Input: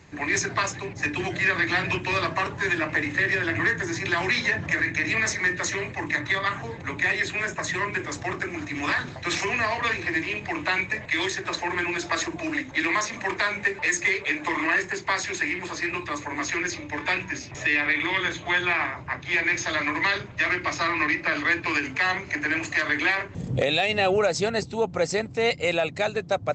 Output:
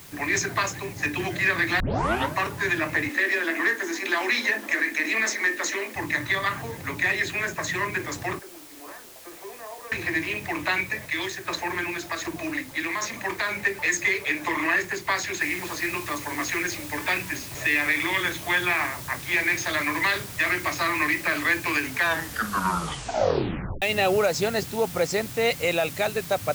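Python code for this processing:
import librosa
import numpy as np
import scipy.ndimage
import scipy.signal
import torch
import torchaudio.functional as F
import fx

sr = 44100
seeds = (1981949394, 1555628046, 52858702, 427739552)

y = fx.steep_highpass(x, sr, hz=210.0, slope=96, at=(3.09, 5.96))
y = fx.ladder_bandpass(y, sr, hz=560.0, resonance_pct=35, at=(8.39, 9.92))
y = fx.tremolo_shape(y, sr, shape='saw_down', hz=1.3, depth_pct=50, at=(10.71, 13.49))
y = fx.noise_floor_step(y, sr, seeds[0], at_s=15.41, before_db=-47, after_db=-40, tilt_db=0.0)
y = fx.edit(y, sr, fx.tape_start(start_s=1.8, length_s=0.55),
    fx.tape_stop(start_s=21.91, length_s=1.91), tone=tone)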